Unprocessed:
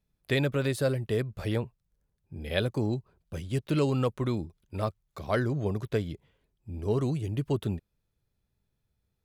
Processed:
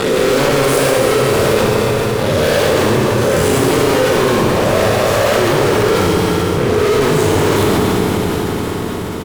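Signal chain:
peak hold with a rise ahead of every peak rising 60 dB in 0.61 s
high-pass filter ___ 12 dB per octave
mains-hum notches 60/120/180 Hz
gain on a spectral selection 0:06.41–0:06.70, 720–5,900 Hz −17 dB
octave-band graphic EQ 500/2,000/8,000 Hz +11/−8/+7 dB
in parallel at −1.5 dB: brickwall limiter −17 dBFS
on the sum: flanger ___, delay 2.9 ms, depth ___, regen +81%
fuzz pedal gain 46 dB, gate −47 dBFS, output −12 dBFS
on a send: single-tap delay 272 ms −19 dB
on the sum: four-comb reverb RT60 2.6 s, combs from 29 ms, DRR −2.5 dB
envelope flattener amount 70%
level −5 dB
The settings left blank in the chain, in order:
87 Hz, 0.96 Hz, 5.7 ms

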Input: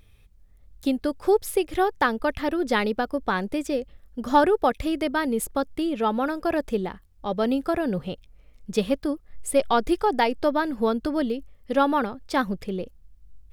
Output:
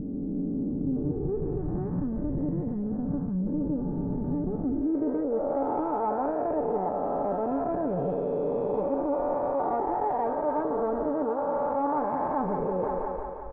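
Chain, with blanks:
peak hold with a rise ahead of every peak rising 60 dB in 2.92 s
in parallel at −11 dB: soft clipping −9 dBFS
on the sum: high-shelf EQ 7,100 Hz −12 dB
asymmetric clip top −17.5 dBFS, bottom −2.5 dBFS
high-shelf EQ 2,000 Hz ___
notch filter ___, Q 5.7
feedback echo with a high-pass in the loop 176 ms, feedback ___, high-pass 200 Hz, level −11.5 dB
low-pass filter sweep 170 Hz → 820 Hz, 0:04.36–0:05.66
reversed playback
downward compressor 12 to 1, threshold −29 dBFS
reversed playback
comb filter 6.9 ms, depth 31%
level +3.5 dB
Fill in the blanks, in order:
−4.5 dB, 2,900 Hz, 64%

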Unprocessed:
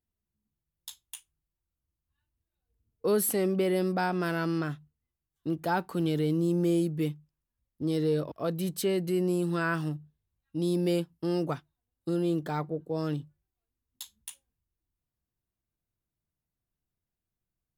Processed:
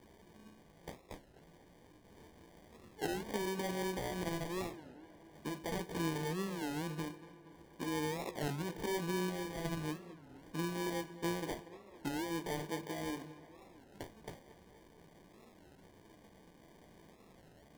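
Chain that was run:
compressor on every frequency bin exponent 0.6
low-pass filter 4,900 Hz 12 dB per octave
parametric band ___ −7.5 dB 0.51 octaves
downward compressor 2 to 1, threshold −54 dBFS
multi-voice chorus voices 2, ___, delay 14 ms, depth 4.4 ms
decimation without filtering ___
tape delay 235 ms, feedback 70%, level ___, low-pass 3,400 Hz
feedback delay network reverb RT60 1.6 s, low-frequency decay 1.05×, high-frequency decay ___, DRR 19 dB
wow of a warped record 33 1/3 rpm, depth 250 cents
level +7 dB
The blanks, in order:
120 Hz, 0.41 Hz, 33×, −15.5 dB, 0.8×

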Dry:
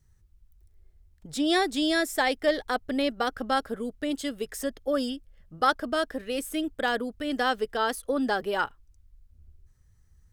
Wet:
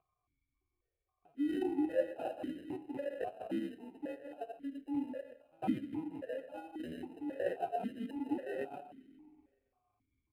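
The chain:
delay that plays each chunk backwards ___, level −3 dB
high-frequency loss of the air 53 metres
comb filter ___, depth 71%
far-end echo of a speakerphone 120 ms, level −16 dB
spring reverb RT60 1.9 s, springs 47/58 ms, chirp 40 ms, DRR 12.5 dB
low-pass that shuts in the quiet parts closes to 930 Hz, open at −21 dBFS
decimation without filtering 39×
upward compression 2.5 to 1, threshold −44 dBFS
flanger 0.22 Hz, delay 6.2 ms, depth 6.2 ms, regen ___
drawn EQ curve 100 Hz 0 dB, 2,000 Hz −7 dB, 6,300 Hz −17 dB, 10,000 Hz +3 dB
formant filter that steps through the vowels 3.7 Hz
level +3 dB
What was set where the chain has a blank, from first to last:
124 ms, 2.4 ms, +57%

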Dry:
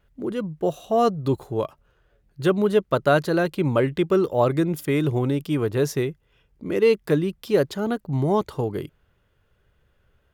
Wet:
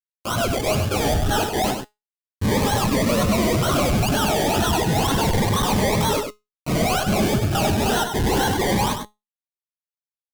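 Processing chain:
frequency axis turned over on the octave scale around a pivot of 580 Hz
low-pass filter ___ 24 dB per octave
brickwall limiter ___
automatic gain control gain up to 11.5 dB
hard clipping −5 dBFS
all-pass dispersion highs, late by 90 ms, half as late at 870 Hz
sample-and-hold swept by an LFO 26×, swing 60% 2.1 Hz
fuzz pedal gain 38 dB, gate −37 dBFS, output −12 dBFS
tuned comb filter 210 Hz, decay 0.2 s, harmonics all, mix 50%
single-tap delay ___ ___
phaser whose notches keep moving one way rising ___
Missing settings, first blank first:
7,200 Hz, −14 dBFS, 98 ms, −7 dB, 0.31 Hz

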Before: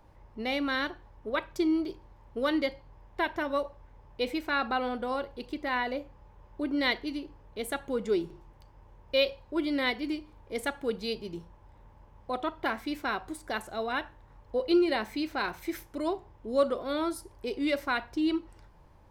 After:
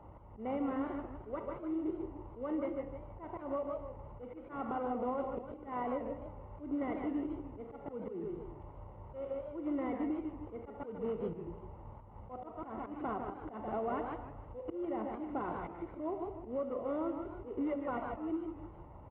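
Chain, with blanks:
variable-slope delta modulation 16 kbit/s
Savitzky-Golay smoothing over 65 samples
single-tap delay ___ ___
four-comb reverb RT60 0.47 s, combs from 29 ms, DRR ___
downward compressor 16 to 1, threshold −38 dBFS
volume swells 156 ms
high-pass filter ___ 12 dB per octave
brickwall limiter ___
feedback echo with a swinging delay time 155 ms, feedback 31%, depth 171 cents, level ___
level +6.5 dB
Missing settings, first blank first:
139 ms, −12.5 dB, 16 dB, 49 Hz, −34.5 dBFS, −8 dB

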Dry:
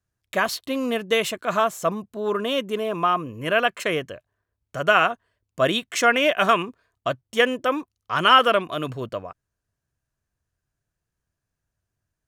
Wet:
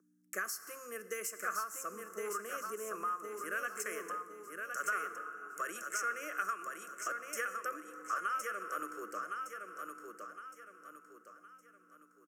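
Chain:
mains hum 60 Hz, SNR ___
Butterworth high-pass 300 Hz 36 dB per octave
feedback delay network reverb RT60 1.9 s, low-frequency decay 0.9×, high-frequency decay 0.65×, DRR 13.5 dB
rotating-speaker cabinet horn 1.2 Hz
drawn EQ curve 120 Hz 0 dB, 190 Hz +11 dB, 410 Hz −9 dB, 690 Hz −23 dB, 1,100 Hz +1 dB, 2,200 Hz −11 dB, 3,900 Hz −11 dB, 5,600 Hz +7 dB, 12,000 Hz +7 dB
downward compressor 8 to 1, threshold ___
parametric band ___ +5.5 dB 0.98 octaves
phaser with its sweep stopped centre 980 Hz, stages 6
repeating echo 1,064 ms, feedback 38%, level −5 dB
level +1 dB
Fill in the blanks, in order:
18 dB, −36 dBFS, 1,200 Hz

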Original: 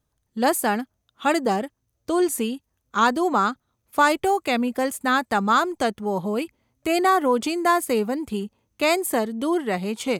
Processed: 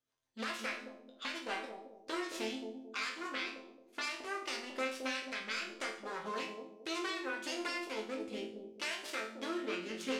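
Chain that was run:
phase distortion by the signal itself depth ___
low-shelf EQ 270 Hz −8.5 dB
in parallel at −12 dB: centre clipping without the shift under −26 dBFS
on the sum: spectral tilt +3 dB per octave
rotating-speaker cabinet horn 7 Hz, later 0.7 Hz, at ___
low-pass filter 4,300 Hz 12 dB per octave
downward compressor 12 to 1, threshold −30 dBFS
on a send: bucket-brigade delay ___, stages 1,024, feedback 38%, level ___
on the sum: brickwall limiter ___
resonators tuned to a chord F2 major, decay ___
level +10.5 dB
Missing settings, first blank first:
0.68 ms, 0:03.53, 220 ms, −5 dB, −19 dBFS, 0.52 s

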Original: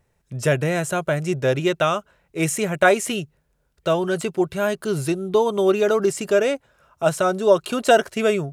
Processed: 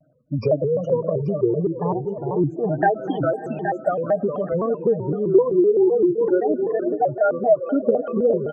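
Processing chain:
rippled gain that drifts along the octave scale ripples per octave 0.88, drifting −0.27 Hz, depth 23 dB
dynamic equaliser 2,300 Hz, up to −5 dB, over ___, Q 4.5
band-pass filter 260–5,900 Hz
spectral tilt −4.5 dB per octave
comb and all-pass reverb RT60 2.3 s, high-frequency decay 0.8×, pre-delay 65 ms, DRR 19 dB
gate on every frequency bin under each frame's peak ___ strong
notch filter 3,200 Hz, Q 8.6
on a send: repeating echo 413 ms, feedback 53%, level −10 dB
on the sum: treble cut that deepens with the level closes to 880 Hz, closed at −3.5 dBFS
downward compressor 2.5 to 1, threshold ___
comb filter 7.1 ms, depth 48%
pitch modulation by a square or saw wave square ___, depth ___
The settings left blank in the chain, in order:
−38 dBFS, −15 dB, −22 dBFS, 3.9 Hz, 160 cents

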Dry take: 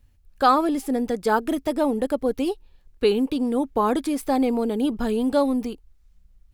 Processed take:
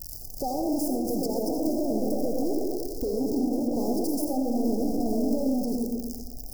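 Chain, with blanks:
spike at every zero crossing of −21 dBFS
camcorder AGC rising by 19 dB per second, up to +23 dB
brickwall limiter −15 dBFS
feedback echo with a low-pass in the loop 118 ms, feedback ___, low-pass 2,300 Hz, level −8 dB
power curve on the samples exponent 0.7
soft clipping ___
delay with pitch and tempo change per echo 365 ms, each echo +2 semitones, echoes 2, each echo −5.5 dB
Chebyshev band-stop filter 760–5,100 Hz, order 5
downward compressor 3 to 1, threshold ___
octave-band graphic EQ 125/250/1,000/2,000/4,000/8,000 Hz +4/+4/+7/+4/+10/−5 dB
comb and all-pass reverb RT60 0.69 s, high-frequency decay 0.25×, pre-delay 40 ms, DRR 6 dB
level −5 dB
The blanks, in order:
39%, −18.5 dBFS, −25 dBFS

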